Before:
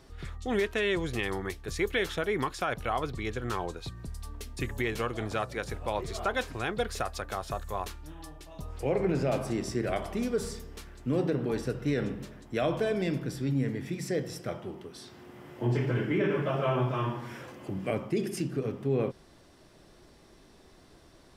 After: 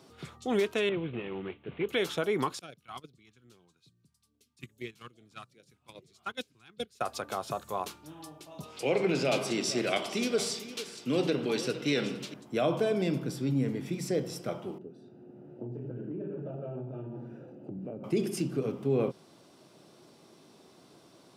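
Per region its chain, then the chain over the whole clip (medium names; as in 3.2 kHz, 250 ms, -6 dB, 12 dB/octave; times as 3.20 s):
0.89–1.89 s: CVSD coder 16 kbps + peaking EQ 1 kHz -8.5 dB 1.9 oct
2.59–7.01 s: gate -29 dBFS, range -22 dB + phase shifter stages 2, 2.4 Hz, lowest notch 500–1000 Hz
8.63–12.34 s: frequency weighting D + delay 457 ms -14 dB
14.78–18.04 s: boxcar filter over 41 samples + compression, threshold -35 dBFS
whole clip: high-pass 130 Hz 24 dB/octave; peaking EQ 1.8 kHz -9 dB 0.36 oct; trim +1 dB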